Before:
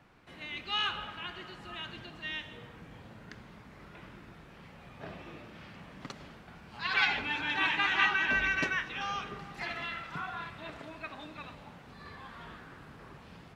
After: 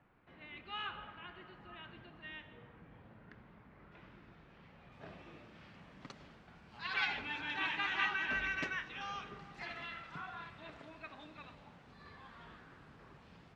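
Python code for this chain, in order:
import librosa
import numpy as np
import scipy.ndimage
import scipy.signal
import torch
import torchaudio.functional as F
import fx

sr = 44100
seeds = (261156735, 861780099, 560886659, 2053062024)

y = fx.lowpass(x, sr, hz=fx.steps((0.0, 2300.0), (3.92, 4200.0), (4.92, 7800.0)), slope=12)
y = fx.doppler_dist(y, sr, depth_ms=0.13)
y = y * librosa.db_to_amplitude(-7.5)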